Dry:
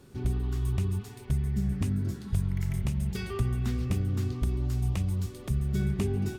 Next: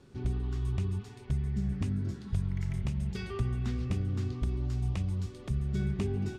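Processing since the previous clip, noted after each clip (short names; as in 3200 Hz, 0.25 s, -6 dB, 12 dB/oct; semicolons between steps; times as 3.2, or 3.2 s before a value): LPF 6500 Hz 12 dB/oct; gain -3 dB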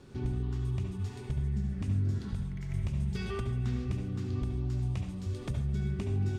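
compressor, threshold -35 dBFS, peak gain reduction 10.5 dB; on a send at -4.5 dB: reverb RT60 0.40 s, pre-delay 63 ms; on the sum: gain +3.5 dB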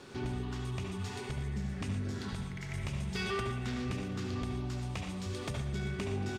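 overdrive pedal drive 19 dB, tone 7800 Hz, clips at -21.5 dBFS; echo 0.117 s -11.5 dB; gain -3.5 dB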